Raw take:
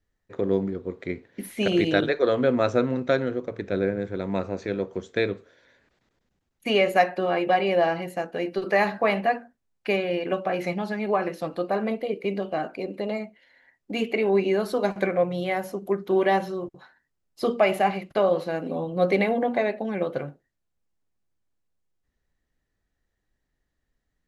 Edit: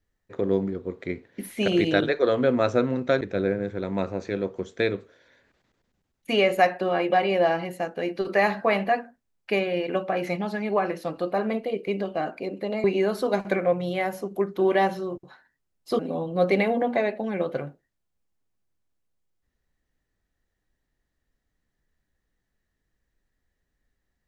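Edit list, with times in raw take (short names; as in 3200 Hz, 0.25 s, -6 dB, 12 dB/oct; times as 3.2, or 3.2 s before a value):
3.21–3.58 cut
13.21–14.35 cut
17.5–18.6 cut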